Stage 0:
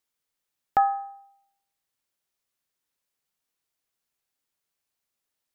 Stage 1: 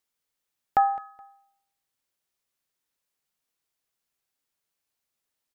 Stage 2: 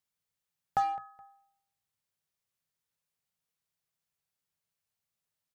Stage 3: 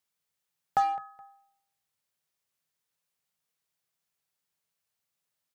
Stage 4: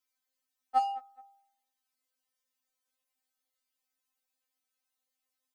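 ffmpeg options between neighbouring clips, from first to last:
ffmpeg -i in.wav -af "aecho=1:1:211|422:0.106|0.0275" out.wav
ffmpeg -i in.wav -filter_complex "[0:a]equalizer=frequency=100:width_type=o:width=0.33:gain=12,equalizer=frequency=160:width_type=o:width=0.33:gain=11,equalizer=frequency=315:width_type=o:width=0.33:gain=-7,asplit=2[link_01][link_02];[link_02]aeval=exprs='0.0422*(abs(mod(val(0)/0.0422+3,4)-2)-1)':channel_layout=same,volume=-10dB[link_03];[link_01][link_03]amix=inputs=2:normalize=0,volume=-7.5dB" out.wav
ffmpeg -i in.wav -af "lowshelf=frequency=120:gain=-10.5,volume=3.5dB" out.wav
ffmpeg -i in.wav -af "afftfilt=real='re*3.46*eq(mod(b,12),0)':imag='im*3.46*eq(mod(b,12),0)':win_size=2048:overlap=0.75" out.wav

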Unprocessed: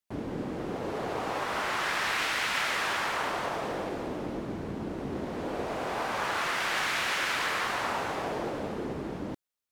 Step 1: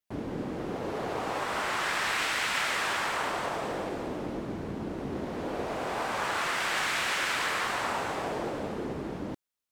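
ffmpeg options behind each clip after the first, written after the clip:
ffmpeg -i in.wav -af "adynamicequalizer=threshold=0.00112:dfrequency=8000:dqfactor=3.9:tfrequency=8000:tqfactor=3.9:attack=5:release=100:ratio=0.375:range=2.5:mode=boostabove:tftype=bell" out.wav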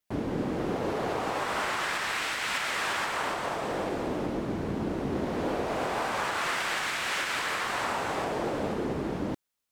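ffmpeg -i in.wav -af "alimiter=level_in=0.5dB:limit=-24dB:level=0:latency=1:release=495,volume=-0.5dB,volume=4.5dB" out.wav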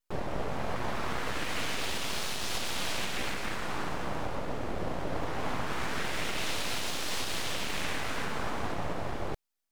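ffmpeg -i in.wav -af "aeval=exprs='abs(val(0))':channel_layout=same" out.wav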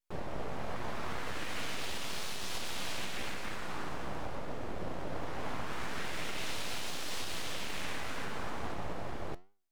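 ffmpeg -i in.wav -af "flanger=delay=9.7:depth=6.9:regen=83:speed=0.84:shape=triangular,volume=-1dB" out.wav

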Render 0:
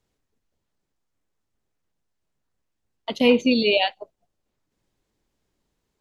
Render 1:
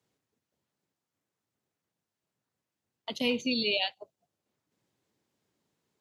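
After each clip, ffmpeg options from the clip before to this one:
ffmpeg -i in.wav -filter_complex "[0:a]highpass=frequency=100:width=0.5412,highpass=frequency=100:width=1.3066,acrossover=split=130|3000[link_01][link_02][link_03];[link_02]acompressor=threshold=-48dB:ratio=1.5[link_04];[link_01][link_04][link_03]amix=inputs=3:normalize=0,volume=-2dB" out.wav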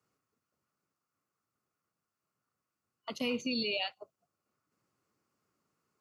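ffmpeg -i in.wav -af "superequalizer=10b=3.16:13b=0.447,alimiter=limit=-21dB:level=0:latency=1:release=38,volume=-2.5dB" out.wav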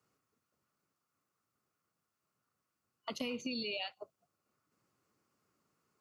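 ffmpeg -i in.wav -af "acompressor=threshold=-37dB:ratio=6,volume=1.5dB" out.wav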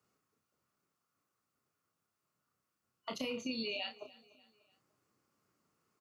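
ffmpeg -i in.wav -filter_complex "[0:a]asplit=2[link_01][link_02];[link_02]adelay=31,volume=-6dB[link_03];[link_01][link_03]amix=inputs=2:normalize=0,aecho=1:1:295|590|885:0.0891|0.041|0.0189,volume=-1dB" out.wav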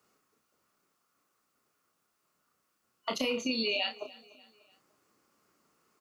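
ffmpeg -i in.wav -af "equalizer=frequency=110:width_type=o:width=1.3:gain=-10.5,volume=8.5dB" out.wav

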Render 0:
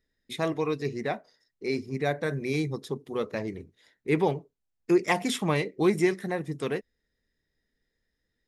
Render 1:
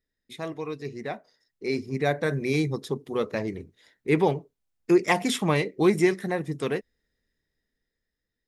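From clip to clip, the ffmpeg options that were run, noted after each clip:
ffmpeg -i in.wav -af "dynaudnorm=framelen=280:gausssize=11:maxgain=10.5dB,volume=-6dB" out.wav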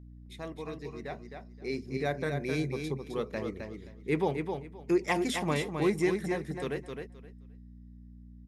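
ffmpeg -i in.wav -filter_complex "[0:a]aeval=exprs='val(0)+0.00891*(sin(2*PI*60*n/s)+sin(2*PI*2*60*n/s)/2+sin(2*PI*3*60*n/s)/3+sin(2*PI*4*60*n/s)/4+sin(2*PI*5*60*n/s)/5)':channel_layout=same,asplit=2[link_01][link_02];[link_02]aecho=0:1:262|524|786:0.501|0.0952|0.0181[link_03];[link_01][link_03]amix=inputs=2:normalize=0,volume=-7dB" out.wav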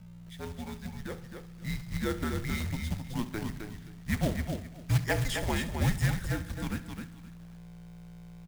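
ffmpeg -i in.wav -af "aecho=1:1:66|132|198|264|330|396:0.168|0.099|0.0584|0.0345|0.0203|0.012,acrusher=bits=3:mode=log:mix=0:aa=0.000001,afreqshift=-230" out.wav

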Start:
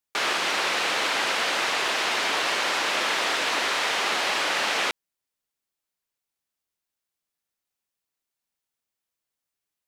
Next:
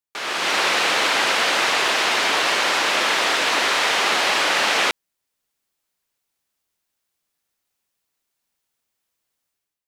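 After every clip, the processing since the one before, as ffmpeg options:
ffmpeg -i in.wav -af "dynaudnorm=framelen=110:gausssize=7:maxgain=13dB,volume=-5dB" out.wav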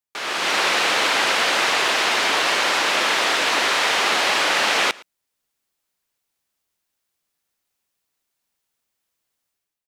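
ffmpeg -i in.wav -af "aecho=1:1:114:0.0708" out.wav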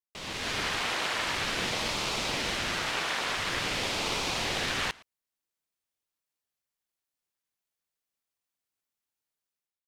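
ffmpeg -i in.wav -af "aeval=exprs='val(0)*sin(2*PI*920*n/s+920*0.85/0.48*sin(2*PI*0.48*n/s))':channel_layout=same,volume=-8.5dB" out.wav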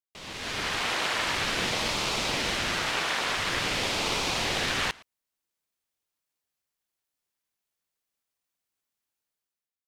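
ffmpeg -i in.wav -af "dynaudnorm=framelen=180:gausssize=7:maxgain=5.5dB,volume=-3dB" out.wav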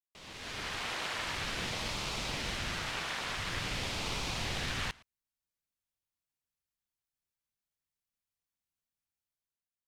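ffmpeg -i in.wav -af "asubboost=boost=3:cutoff=200,volume=-8.5dB" out.wav

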